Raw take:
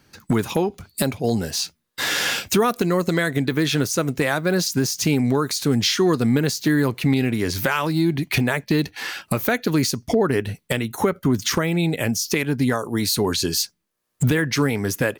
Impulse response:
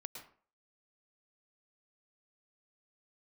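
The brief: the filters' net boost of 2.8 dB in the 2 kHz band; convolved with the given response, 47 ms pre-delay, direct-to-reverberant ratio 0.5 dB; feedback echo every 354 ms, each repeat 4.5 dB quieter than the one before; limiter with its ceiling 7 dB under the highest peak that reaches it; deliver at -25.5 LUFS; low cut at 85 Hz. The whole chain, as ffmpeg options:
-filter_complex "[0:a]highpass=85,equalizer=f=2000:t=o:g=3.5,alimiter=limit=0.282:level=0:latency=1,aecho=1:1:354|708|1062|1416|1770|2124|2478|2832|3186:0.596|0.357|0.214|0.129|0.0772|0.0463|0.0278|0.0167|0.01,asplit=2[s0][s1];[1:a]atrim=start_sample=2205,adelay=47[s2];[s1][s2]afir=irnorm=-1:irlink=0,volume=1.41[s3];[s0][s3]amix=inputs=2:normalize=0,volume=0.422"

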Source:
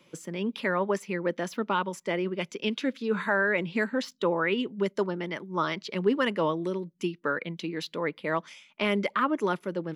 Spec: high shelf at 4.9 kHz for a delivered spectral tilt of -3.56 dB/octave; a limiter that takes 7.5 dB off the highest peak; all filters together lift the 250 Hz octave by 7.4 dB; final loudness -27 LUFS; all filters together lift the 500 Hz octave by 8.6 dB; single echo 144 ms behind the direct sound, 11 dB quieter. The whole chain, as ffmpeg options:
-af "equalizer=f=250:t=o:g=7,equalizer=f=500:t=o:g=8.5,highshelf=f=4900:g=-5,alimiter=limit=0.224:level=0:latency=1,aecho=1:1:144:0.282,volume=0.708"

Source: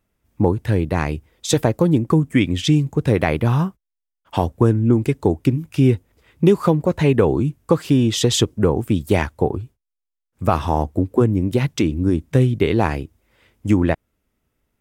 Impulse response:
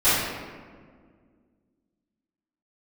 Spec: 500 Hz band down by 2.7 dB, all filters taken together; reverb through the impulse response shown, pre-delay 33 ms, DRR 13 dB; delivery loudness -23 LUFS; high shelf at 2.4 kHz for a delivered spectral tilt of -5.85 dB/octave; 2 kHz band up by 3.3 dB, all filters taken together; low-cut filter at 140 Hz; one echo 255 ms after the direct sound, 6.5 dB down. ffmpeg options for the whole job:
-filter_complex "[0:a]highpass=140,equalizer=f=500:t=o:g=-3.5,equalizer=f=2000:t=o:g=6.5,highshelf=f=2400:g=-5,aecho=1:1:255:0.473,asplit=2[s0][s1];[1:a]atrim=start_sample=2205,adelay=33[s2];[s1][s2]afir=irnorm=-1:irlink=0,volume=0.0237[s3];[s0][s3]amix=inputs=2:normalize=0,volume=0.75"

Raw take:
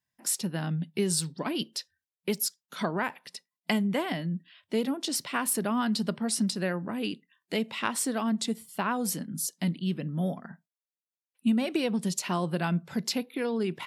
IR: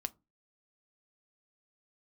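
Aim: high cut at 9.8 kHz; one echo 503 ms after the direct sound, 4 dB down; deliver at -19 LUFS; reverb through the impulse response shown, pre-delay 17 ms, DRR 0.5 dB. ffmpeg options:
-filter_complex "[0:a]lowpass=9800,aecho=1:1:503:0.631,asplit=2[s0][s1];[1:a]atrim=start_sample=2205,adelay=17[s2];[s1][s2]afir=irnorm=-1:irlink=0,volume=1.06[s3];[s0][s3]amix=inputs=2:normalize=0,volume=2.37"

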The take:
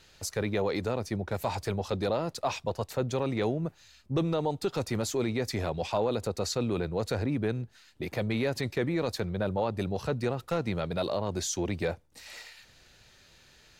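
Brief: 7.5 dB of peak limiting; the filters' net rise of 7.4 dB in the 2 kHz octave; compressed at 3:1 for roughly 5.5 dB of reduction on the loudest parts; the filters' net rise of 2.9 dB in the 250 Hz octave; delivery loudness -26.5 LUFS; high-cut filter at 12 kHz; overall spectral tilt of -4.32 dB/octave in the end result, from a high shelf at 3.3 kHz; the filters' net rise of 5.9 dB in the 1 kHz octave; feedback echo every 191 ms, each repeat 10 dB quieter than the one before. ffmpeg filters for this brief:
-af "lowpass=12000,equalizer=f=250:t=o:g=3.5,equalizer=f=1000:t=o:g=5.5,equalizer=f=2000:t=o:g=5,highshelf=f=3300:g=8,acompressor=threshold=0.0398:ratio=3,alimiter=limit=0.075:level=0:latency=1,aecho=1:1:191|382|573|764:0.316|0.101|0.0324|0.0104,volume=2.24"

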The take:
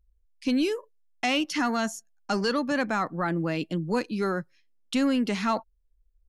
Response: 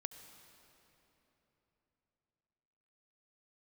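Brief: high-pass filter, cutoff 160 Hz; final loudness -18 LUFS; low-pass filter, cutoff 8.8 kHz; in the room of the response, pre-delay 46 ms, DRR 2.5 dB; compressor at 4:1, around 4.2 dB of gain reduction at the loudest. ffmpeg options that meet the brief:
-filter_complex "[0:a]highpass=160,lowpass=8800,acompressor=threshold=0.0501:ratio=4,asplit=2[s0][s1];[1:a]atrim=start_sample=2205,adelay=46[s2];[s1][s2]afir=irnorm=-1:irlink=0,volume=1.06[s3];[s0][s3]amix=inputs=2:normalize=0,volume=3.76"

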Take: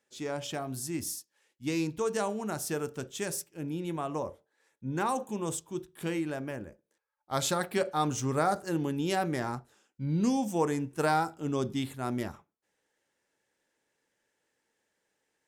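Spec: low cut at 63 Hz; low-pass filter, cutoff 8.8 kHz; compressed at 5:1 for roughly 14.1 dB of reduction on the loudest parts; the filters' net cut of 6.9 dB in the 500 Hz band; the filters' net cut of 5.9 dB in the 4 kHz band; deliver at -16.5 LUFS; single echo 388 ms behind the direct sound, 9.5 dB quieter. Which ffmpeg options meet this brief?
-af "highpass=63,lowpass=8800,equalizer=f=500:t=o:g=-9,equalizer=f=4000:t=o:g=-7.5,acompressor=threshold=0.00794:ratio=5,aecho=1:1:388:0.335,volume=28.2"

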